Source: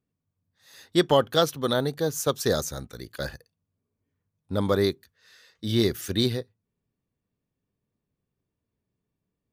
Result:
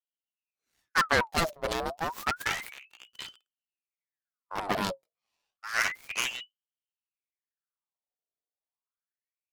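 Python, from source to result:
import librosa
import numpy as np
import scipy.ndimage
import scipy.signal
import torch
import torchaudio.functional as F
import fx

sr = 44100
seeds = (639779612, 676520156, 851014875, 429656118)

y = fx.cheby_harmonics(x, sr, harmonics=(3, 5, 7, 8), levels_db=(-17, -40, -22, -16), full_scale_db=-7.5)
y = fx.low_shelf(y, sr, hz=170.0, db=7.0)
y = fx.ring_lfo(y, sr, carrier_hz=1800.0, swing_pct=70, hz=0.3)
y = y * 10.0 ** (-2.0 / 20.0)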